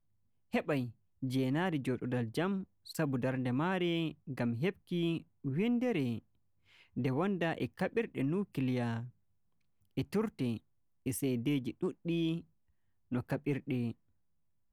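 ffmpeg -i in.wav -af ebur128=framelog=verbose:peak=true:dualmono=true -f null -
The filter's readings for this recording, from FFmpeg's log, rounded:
Integrated loudness:
  I:         -32.6 LUFS
  Threshold: -42.7 LUFS
Loudness range:
  LRA:         3.0 LU
  Threshold: -53.0 LUFS
  LRA low:   -34.7 LUFS
  LRA high:  -31.7 LUFS
True peak:
  Peak:      -21.4 dBFS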